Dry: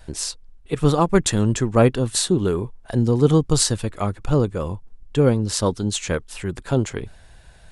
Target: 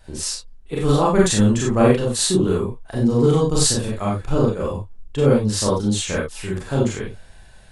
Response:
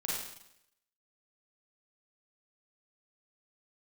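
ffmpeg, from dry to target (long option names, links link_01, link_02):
-filter_complex "[1:a]atrim=start_sample=2205,afade=type=out:start_time=0.17:duration=0.01,atrim=end_sample=7938,asetrate=52920,aresample=44100[link_01];[0:a][link_01]afir=irnorm=-1:irlink=0"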